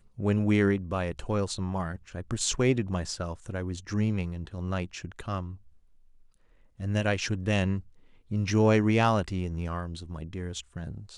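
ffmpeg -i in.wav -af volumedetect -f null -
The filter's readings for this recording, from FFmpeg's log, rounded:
mean_volume: -29.2 dB
max_volume: -10.9 dB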